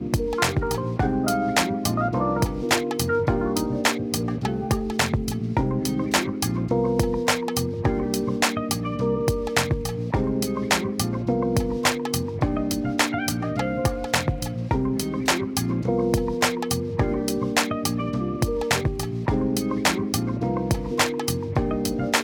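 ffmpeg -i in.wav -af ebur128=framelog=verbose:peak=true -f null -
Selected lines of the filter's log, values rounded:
Integrated loudness:
  I:         -24.1 LUFS
  Threshold: -34.1 LUFS
Loudness range:
  LRA:         1.2 LU
  Threshold: -44.1 LUFS
  LRA low:   -24.5 LUFS
  LRA high:  -23.4 LUFS
True peak:
  Peak:       -6.4 dBFS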